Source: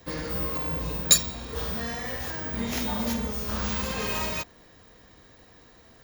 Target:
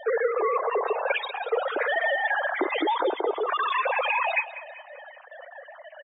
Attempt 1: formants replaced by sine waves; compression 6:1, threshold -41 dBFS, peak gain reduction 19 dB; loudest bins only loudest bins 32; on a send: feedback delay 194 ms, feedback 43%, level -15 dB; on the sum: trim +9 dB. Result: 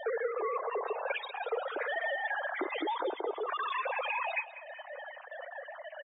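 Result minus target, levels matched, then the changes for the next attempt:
compression: peak gain reduction +9 dB
change: compression 6:1, threshold -30.5 dBFS, peak gain reduction 10.5 dB

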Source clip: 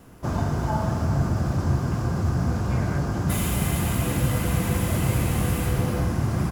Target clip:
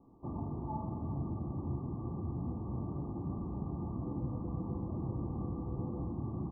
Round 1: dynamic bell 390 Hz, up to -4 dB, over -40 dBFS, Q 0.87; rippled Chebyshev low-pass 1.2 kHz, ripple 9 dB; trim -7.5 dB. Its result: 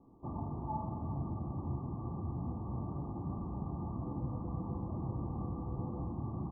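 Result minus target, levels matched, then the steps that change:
1 kHz band +3.5 dB
change: dynamic bell 820 Hz, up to -4 dB, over -40 dBFS, Q 0.87

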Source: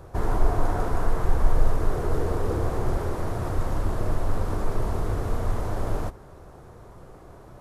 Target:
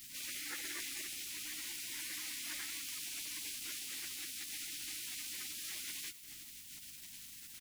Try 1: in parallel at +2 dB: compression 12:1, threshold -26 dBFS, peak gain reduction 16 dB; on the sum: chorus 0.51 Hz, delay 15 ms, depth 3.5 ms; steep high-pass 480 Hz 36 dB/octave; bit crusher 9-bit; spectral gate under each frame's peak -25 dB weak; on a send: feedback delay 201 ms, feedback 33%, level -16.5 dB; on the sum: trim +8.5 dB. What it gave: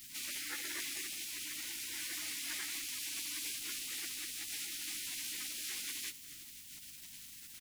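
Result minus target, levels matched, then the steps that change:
compression: peak gain reduction -9 dB
change: compression 12:1, threshold -36 dBFS, peak gain reduction 25 dB

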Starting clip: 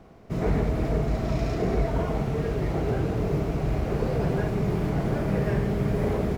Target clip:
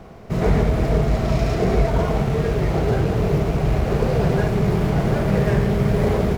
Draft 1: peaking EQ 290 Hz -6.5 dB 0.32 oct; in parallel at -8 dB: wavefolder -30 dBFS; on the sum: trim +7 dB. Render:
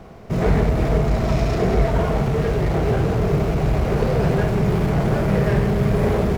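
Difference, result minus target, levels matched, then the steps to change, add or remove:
wavefolder: distortion -31 dB
change: wavefolder -38 dBFS

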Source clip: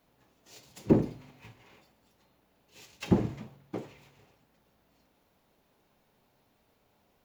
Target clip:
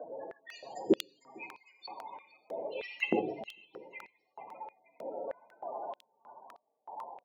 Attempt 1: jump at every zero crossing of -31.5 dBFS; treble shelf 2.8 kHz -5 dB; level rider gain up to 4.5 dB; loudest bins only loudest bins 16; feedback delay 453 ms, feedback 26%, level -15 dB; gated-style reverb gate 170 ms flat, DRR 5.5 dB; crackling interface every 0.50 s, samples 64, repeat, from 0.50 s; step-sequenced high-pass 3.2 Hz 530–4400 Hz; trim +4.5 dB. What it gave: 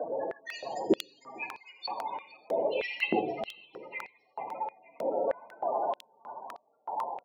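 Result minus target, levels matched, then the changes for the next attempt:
jump at every zero crossing: distortion +9 dB
change: jump at every zero crossing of -42 dBFS

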